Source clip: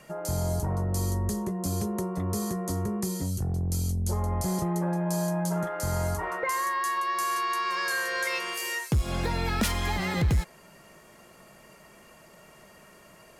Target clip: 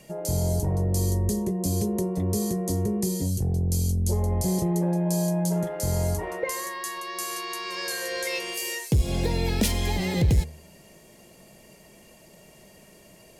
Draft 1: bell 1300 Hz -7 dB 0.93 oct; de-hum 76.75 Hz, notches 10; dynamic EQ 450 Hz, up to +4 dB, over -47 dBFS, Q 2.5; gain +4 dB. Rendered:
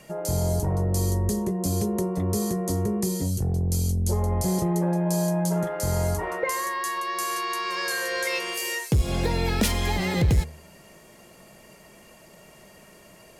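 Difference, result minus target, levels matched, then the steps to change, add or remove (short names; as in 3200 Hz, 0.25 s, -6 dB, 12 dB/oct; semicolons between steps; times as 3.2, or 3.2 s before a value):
1000 Hz band +4.5 dB
change: bell 1300 Hz -16.5 dB 0.93 oct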